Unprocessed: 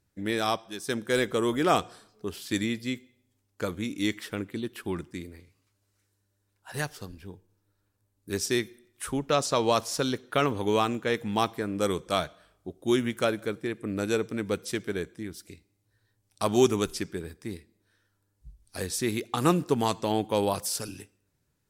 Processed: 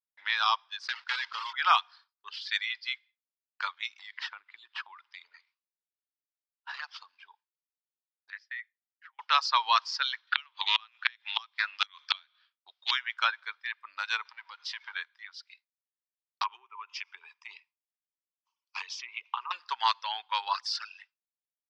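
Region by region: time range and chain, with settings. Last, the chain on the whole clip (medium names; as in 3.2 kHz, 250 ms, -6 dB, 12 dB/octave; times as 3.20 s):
0.81–1.54 s: block-companded coder 3-bit + treble shelf 11 kHz +7.5 dB + compression 5:1, threshold -27 dBFS
3.99–7.27 s: bass shelf 310 Hz +10 dB + compression 16:1, threshold -31 dBFS + careless resampling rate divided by 4×, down none, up hold
8.30–9.19 s: band-pass filter 1.9 kHz, Q 8.1 + compression 10:1, threshold -39 dBFS
10.27–12.91 s: frequency weighting D + inverted gate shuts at -10 dBFS, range -25 dB + loudspeaker Doppler distortion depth 0.16 ms
14.25–14.93 s: compression 16:1, threshold -35 dBFS + power-law waveshaper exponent 0.7
16.43–19.51 s: low-pass that closes with the level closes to 1.4 kHz, closed at -21 dBFS + rippled EQ curve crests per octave 0.73, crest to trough 15 dB + compression 16:1, threshold -30 dBFS
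whole clip: expander -46 dBFS; Chebyshev band-pass 930–5000 Hz, order 4; reverb removal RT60 1.7 s; trim +6.5 dB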